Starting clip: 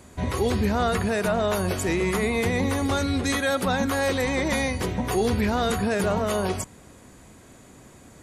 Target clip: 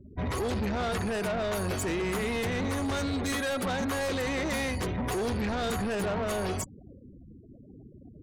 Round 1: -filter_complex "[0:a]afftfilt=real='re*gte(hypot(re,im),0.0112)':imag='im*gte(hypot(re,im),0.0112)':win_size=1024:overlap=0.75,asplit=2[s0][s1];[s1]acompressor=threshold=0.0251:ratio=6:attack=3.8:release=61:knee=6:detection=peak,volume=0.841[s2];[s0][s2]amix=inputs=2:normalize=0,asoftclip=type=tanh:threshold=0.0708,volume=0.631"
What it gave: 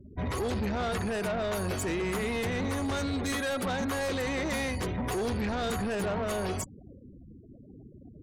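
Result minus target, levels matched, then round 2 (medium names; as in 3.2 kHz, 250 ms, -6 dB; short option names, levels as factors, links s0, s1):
compression: peak gain reduction +7.5 dB
-filter_complex "[0:a]afftfilt=real='re*gte(hypot(re,im),0.0112)':imag='im*gte(hypot(re,im),0.0112)':win_size=1024:overlap=0.75,asplit=2[s0][s1];[s1]acompressor=threshold=0.0708:ratio=6:attack=3.8:release=61:knee=6:detection=peak,volume=0.841[s2];[s0][s2]amix=inputs=2:normalize=0,asoftclip=type=tanh:threshold=0.0708,volume=0.631"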